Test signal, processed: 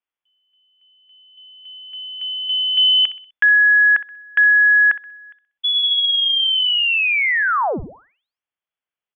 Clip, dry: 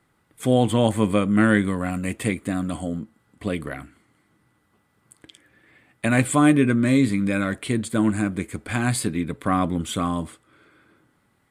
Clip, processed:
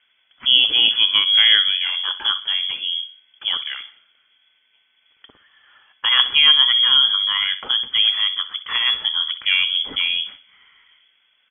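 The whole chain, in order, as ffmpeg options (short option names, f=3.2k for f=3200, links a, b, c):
-filter_complex "[0:a]asplit=2[a][b];[b]adelay=63,lowpass=f=2.5k:p=1,volume=-13dB,asplit=2[c][d];[d]adelay=63,lowpass=f=2.5k:p=1,volume=0.43,asplit=2[e][f];[f]adelay=63,lowpass=f=2.5k:p=1,volume=0.43,asplit=2[g][h];[h]adelay=63,lowpass=f=2.5k:p=1,volume=0.43[i];[a][c][e][g][i]amix=inputs=5:normalize=0,lowpass=f=3k:t=q:w=0.5098,lowpass=f=3k:t=q:w=0.6013,lowpass=f=3k:t=q:w=0.9,lowpass=f=3k:t=q:w=2.563,afreqshift=-3500,volume=3dB"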